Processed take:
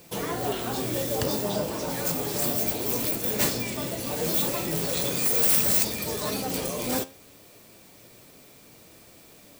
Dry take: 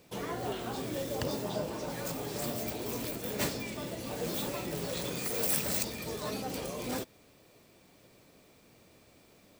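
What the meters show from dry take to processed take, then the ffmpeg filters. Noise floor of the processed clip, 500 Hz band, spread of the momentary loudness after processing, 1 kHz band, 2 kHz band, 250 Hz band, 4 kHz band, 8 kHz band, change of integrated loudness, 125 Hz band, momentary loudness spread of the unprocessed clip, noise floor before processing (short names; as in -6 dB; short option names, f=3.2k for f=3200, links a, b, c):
-52 dBFS, +6.0 dB, 10 LU, +6.5 dB, +6.5 dB, +6.0 dB, +8.0 dB, +10.0 dB, +9.5 dB, +6.5 dB, 8 LU, -61 dBFS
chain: -af "highshelf=f=7.2k:g=9,flanger=delay=5.7:depth=6.3:regen=79:speed=0.22:shape=triangular,acrusher=bits=10:mix=0:aa=0.000001,aeval=exprs='0.282*sin(PI/2*3.98*val(0)/0.282)':c=same,volume=-5dB"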